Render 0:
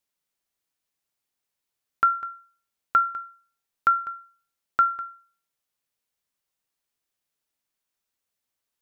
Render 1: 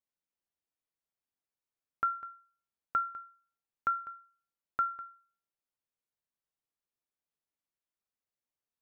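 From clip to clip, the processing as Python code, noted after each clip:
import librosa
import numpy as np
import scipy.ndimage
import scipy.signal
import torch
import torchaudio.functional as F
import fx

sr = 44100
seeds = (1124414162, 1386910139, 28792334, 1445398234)

y = fx.high_shelf(x, sr, hz=2000.0, db=-9.5)
y = y * librosa.db_to_amplitude(-7.5)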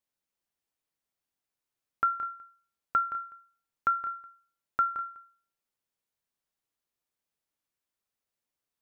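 y = x + 10.0 ** (-12.5 / 20.0) * np.pad(x, (int(170 * sr / 1000.0), 0))[:len(x)]
y = y * librosa.db_to_amplitude(4.0)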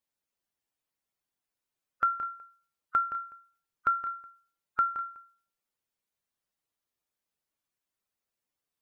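y = fx.spec_quant(x, sr, step_db=15)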